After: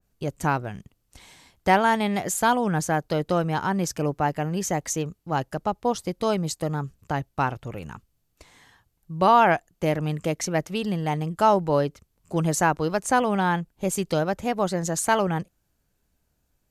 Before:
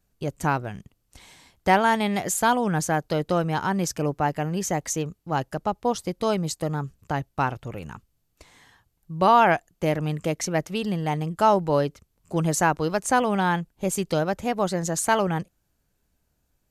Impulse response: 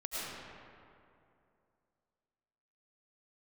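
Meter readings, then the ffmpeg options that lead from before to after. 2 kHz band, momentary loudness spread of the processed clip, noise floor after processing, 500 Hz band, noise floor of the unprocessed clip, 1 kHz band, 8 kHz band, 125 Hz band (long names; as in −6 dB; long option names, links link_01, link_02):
−0.5 dB, 10 LU, −73 dBFS, 0.0 dB, −73 dBFS, 0.0 dB, −0.5 dB, 0.0 dB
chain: -af "adynamicequalizer=threshold=0.0224:dfrequency=2000:dqfactor=0.7:tfrequency=2000:tqfactor=0.7:attack=5:release=100:ratio=0.375:range=1.5:mode=cutabove:tftype=highshelf"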